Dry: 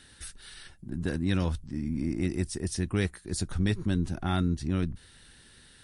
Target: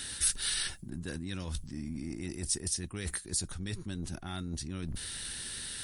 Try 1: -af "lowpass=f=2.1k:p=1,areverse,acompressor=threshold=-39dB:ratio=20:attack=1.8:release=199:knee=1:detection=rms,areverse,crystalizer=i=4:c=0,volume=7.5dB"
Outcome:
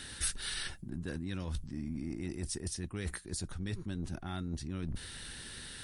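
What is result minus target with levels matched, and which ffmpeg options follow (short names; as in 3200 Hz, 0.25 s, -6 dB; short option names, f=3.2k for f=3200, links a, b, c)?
8000 Hz band -4.0 dB
-af "lowpass=f=8k:p=1,areverse,acompressor=threshold=-39dB:ratio=20:attack=1.8:release=199:knee=1:detection=rms,areverse,crystalizer=i=4:c=0,volume=7.5dB"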